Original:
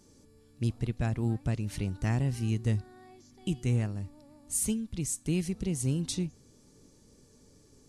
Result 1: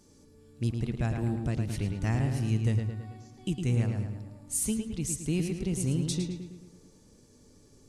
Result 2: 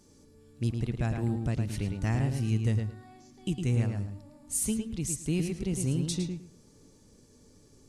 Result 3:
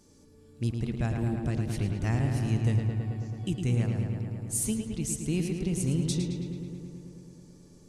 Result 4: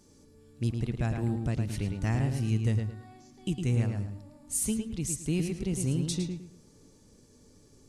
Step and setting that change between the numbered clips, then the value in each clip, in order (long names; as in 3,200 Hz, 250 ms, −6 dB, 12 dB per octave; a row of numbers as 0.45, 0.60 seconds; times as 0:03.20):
feedback echo with a low-pass in the loop, feedback: 53, 19, 81, 28%